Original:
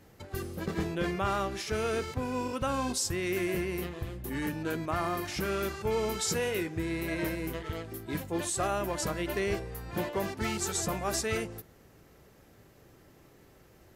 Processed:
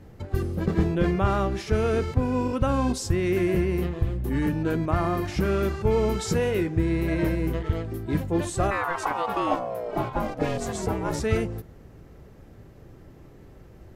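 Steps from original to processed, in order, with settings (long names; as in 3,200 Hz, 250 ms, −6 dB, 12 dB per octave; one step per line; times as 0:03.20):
spectral tilt −2.5 dB per octave
0:08.70–0:11.19: ring modulation 1,200 Hz → 220 Hz
level +4 dB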